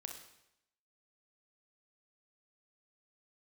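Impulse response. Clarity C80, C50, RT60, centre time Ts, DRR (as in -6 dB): 9.0 dB, 5.5 dB, 0.80 s, 27 ms, 4.0 dB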